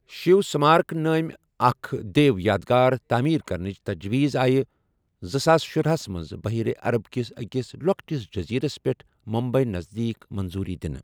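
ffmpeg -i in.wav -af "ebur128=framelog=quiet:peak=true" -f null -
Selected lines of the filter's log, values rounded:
Integrated loudness:
  I:         -24.0 LUFS
  Threshold: -34.1 LUFS
Loudness range:
  LRA:         6.0 LU
  Threshold: -44.5 LUFS
  LRA low:   -27.7 LUFS
  LRA high:  -21.7 LUFS
True peak:
  Peak:       -4.2 dBFS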